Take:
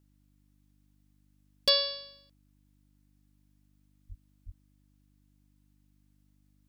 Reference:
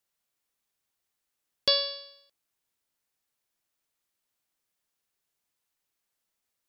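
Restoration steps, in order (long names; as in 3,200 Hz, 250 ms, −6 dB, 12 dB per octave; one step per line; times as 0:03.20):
clipped peaks rebuilt −14.5 dBFS
hum removal 49.8 Hz, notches 6
0:04.08–0:04.20: high-pass filter 140 Hz 24 dB per octave
0:04.45–0:04.57: high-pass filter 140 Hz 24 dB per octave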